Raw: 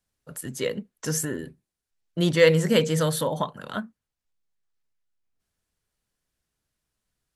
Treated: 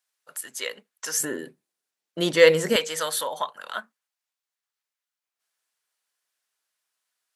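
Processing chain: HPF 930 Hz 12 dB/oct, from 1.2 s 330 Hz, from 2.76 s 840 Hz; gain +3 dB

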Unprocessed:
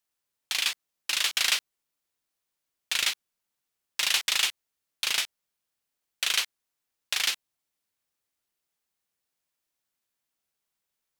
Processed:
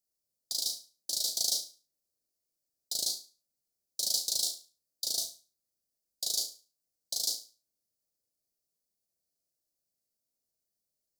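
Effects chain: formant shift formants +2 st; elliptic band-stop 660–4500 Hz, stop band 40 dB; flutter echo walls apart 6.1 m, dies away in 0.34 s; gain -2 dB

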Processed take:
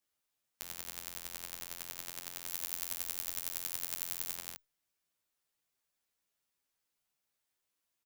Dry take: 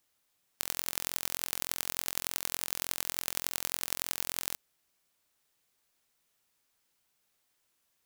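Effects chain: 2.47–4.35 high shelf 5500 Hz +7 dB; endless flanger 11.2 ms +0.26 Hz; gain -6 dB

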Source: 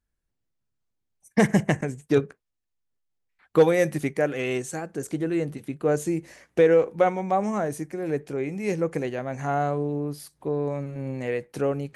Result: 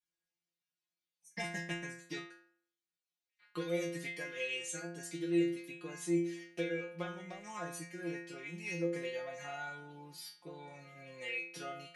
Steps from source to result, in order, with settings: weighting filter D; compressor 3:1, threshold -25 dBFS, peak gain reduction 10 dB; metallic resonator 170 Hz, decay 0.64 s, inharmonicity 0.002; gain +4.5 dB

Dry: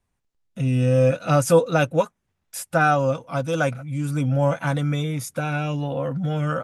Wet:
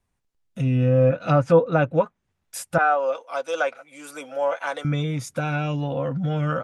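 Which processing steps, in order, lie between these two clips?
2.78–4.85 HPF 440 Hz 24 dB/oct; treble ducked by the level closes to 1800 Hz, closed at -15 dBFS

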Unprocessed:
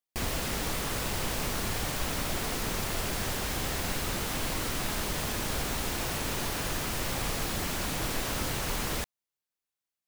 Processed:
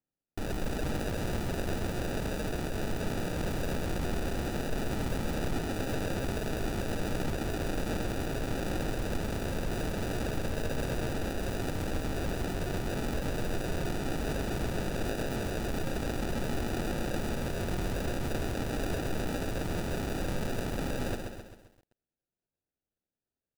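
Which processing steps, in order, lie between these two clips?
in parallel at -10 dB: companded quantiser 2-bit; on the sum: wow and flutter 41 cents; speed mistake 78 rpm record played at 33 rpm; on a send: echo 0.24 s -20 dB; on the sum: sample-and-hold 41×; lo-fi delay 0.132 s, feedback 55%, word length 9-bit, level -5.5 dB; gain -5 dB

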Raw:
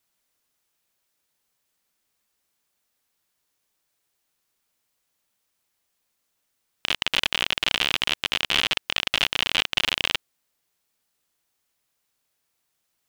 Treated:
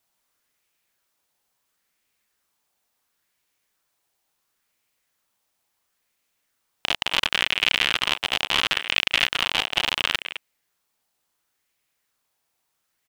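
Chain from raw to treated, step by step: vocal rider within 5 dB 0.5 s; speakerphone echo 0.21 s, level -9 dB; LFO bell 0.72 Hz 750–2400 Hz +6 dB

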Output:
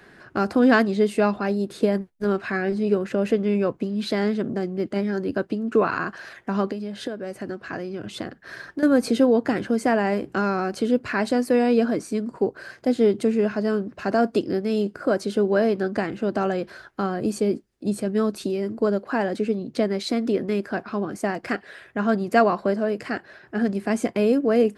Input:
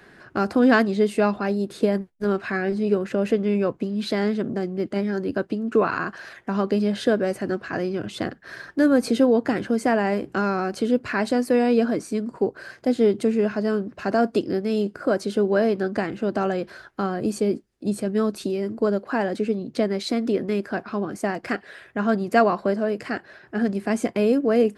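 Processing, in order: 6.66–8.83 compressor 12:1, threshold -27 dBFS, peak gain reduction 13 dB

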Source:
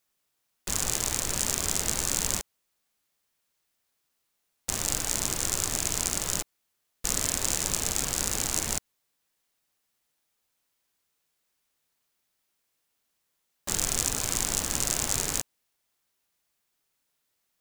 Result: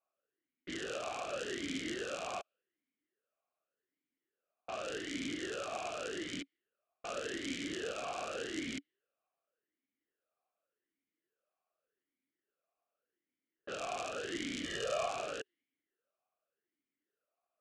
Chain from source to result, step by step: air absorption 53 m; low-pass opened by the level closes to 1500 Hz, open at -28 dBFS; 14.64–15.09 comb 1.7 ms, depth 96%; vowel sweep a-i 0.86 Hz; gain +8.5 dB

